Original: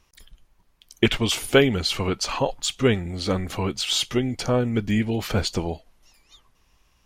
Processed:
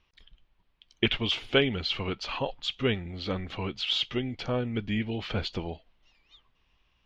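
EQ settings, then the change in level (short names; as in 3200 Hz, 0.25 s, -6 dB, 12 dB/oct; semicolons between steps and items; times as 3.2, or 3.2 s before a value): air absorption 220 m; bell 3200 Hz +10 dB 1.2 oct; -7.5 dB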